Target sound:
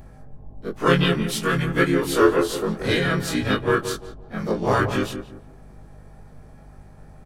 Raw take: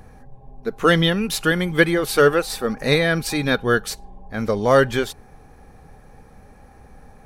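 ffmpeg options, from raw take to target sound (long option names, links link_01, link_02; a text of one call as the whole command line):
ffmpeg -i in.wav -filter_complex "[0:a]afftfilt=real='re':imag='-im':win_size=2048:overlap=0.75,asplit=4[link_01][link_02][link_03][link_04];[link_02]asetrate=35002,aresample=44100,atempo=1.25992,volume=-1dB[link_05];[link_03]asetrate=37084,aresample=44100,atempo=1.18921,volume=-16dB[link_06];[link_04]asetrate=58866,aresample=44100,atempo=0.749154,volume=-17dB[link_07];[link_01][link_05][link_06][link_07]amix=inputs=4:normalize=0,aeval=exprs='val(0)+0.00631*(sin(2*PI*50*n/s)+sin(2*PI*2*50*n/s)/2+sin(2*PI*3*50*n/s)/3+sin(2*PI*4*50*n/s)/4+sin(2*PI*5*50*n/s)/5)':channel_layout=same,asplit=2[link_08][link_09];[link_09]adelay=173,lowpass=frequency=1200:poles=1,volume=-8.5dB,asplit=2[link_10][link_11];[link_11]adelay=173,lowpass=frequency=1200:poles=1,volume=0.31,asplit=2[link_12][link_13];[link_13]adelay=173,lowpass=frequency=1200:poles=1,volume=0.31,asplit=2[link_14][link_15];[link_15]adelay=173,lowpass=frequency=1200:poles=1,volume=0.31[link_16];[link_10][link_12][link_14][link_16]amix=inputs=4:normalize=0[link_17];[link_08][link_17]amix=inputs=2:normalize=0,volume=-1dB" out.wav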